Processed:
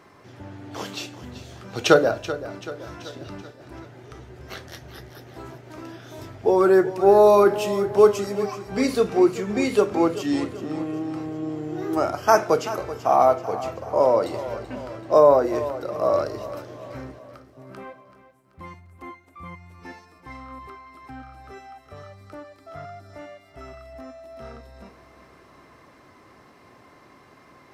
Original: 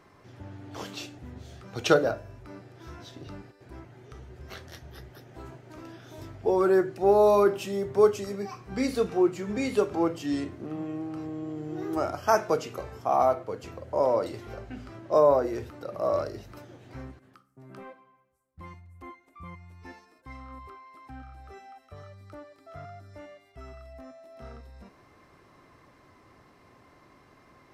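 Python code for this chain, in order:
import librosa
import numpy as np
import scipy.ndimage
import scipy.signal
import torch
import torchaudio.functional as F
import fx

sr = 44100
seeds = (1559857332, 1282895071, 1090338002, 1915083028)

y = fx.low_shelf(x, sr, hz=80.0, db=-11.0)
y = fx.echo_feedback(y, sr, ms=383, feedback_pct=52, wet_db=-14.0)
y = y * librosa.db_to_amplitude(6.0)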